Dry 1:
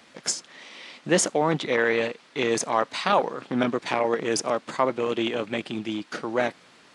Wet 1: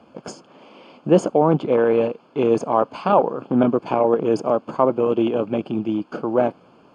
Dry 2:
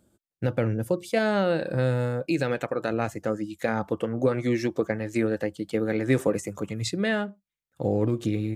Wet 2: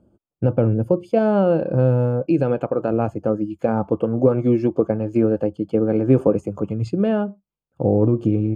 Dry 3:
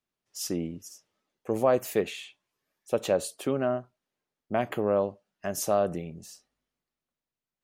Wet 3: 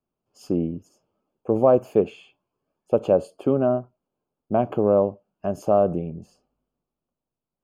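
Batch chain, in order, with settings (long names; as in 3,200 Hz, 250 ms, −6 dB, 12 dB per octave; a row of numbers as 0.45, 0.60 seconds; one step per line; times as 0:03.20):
moving average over 23 samples
level +8 dB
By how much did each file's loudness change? +5.5, +7.0, +6.5 LU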